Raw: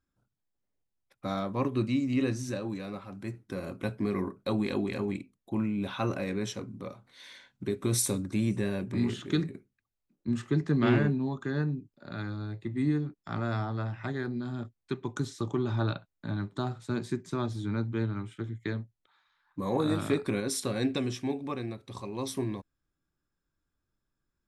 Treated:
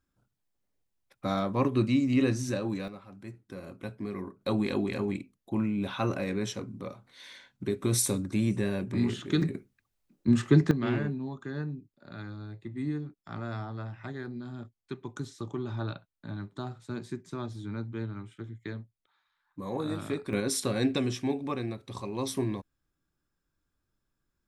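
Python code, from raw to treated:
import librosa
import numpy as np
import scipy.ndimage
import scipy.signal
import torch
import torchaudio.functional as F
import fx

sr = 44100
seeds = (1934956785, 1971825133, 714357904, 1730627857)

y = fx.gain(x, sr, db=fx.steps((0.0, 3.0), (2.88, -6.0), (4.41, 1.0), (9.42, 7.0), (10.71, -5.0), (20.33, 2.0)))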